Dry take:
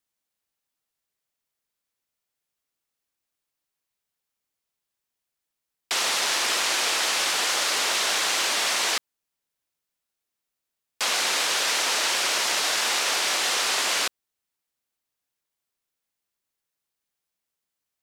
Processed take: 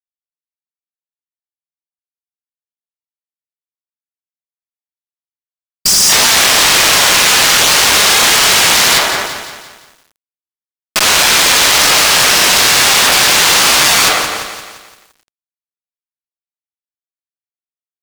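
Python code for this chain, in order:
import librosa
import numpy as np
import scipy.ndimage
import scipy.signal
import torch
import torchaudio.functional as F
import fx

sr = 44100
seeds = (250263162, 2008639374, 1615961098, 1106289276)

p1 = fx.cycle_switch(x, sr, every=3, mode='muted')
p2 = p1 + fx.echo_tape(p1, sr, ms=62, feedback_pct=86, wet_db=-23.5, lp_hz=2900.0, drive_db=8.0, wow_cents=6, dry=0)
p3 = fx.spec_repair(p2, sr, seeds[0], start_s=5.84, length_s=0.23, low_hz=210.0, high_hz=4700.0, source='both')
p4 = fx.granulator(p3, sr, seeds[1], grain_ms=149.0, per_s=20.0, spray_ms=68.0, spread_st=0)
p5 = np.clip(p4, -10.0 ** (-25.5 / 20.0), 10.0 ** (-25.5 / 20.0))
p6 = p4 + (p5 * 10.0 ** (-8.5 / 20.0))
p7 = fx.low_shelf(p6, sr, hz=170.0, db=-7.0)
p8 = fx.over_compress(p7, sr, threshold_db=-35.0, ratio=-1.0)
p9 = fx.low_shelf(p8, sr, hz=470.0, db=-2.5)
p10 = fx.fuzz(p9, sr, gain_db=45.0, gate_db=-53.0)
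p11 = fx.echo_crushed(p10, sr, ms=173, feedback_pct=55, bits=7, wet_db=-9.5)
y = p11 * 10.0 ** (5.5 / 20.0)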